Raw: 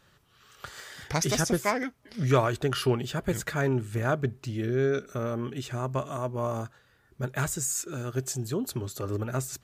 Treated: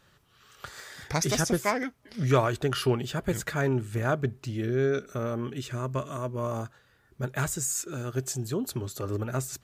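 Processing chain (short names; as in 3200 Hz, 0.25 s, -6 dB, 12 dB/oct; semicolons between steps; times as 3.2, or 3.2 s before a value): 0.68–1.3 notch 3000 Hz, Q 9.2; 5.56–6.52 bell 780 Hz -14 dB 0.24 oct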